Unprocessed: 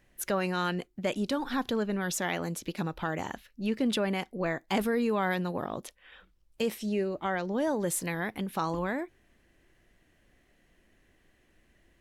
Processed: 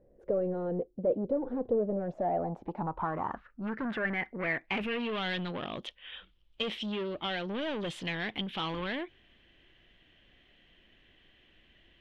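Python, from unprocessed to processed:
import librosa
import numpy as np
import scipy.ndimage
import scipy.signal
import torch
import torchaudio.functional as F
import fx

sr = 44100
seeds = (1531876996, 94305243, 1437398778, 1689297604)

y = 10.0 ** (-31.5 / 20.0) * np.tanh(x / 10.0 ** (-31.5 / 20.0))
y = fx.filter_sweep_lowpass(y, sr, from_hz=510.0, to_hz=3200.0, start_s=1.73, end_s=5.18, q=5.7)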